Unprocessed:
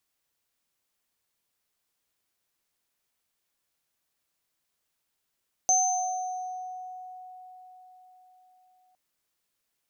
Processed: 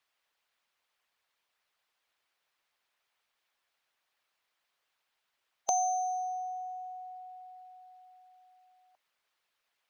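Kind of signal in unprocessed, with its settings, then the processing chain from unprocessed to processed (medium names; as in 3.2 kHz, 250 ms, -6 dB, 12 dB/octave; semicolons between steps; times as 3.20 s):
sine partials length 3.26 s, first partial 738 Hz, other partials 6.22 kHz, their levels 4.5 dB, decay 4.89 s, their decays 1.32 s, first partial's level -23 dB
harmonic-percussive split percussive +9 dB; three-band isolator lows -15 dB, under 540 Hz, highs -15 dB, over 4.2 kHz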